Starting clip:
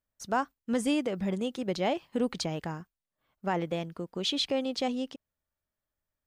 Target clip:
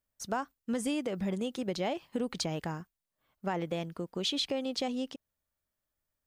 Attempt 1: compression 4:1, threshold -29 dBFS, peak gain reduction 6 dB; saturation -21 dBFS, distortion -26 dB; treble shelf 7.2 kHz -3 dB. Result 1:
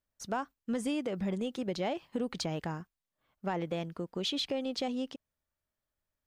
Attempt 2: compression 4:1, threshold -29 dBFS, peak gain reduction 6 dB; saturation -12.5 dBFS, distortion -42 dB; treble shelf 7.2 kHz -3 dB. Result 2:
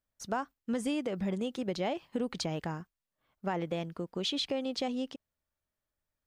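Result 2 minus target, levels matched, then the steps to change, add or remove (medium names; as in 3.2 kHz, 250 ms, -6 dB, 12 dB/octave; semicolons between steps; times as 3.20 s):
8 kHz band -3.0 dB
change: treble shelf 7.2 kHz +4.5 dB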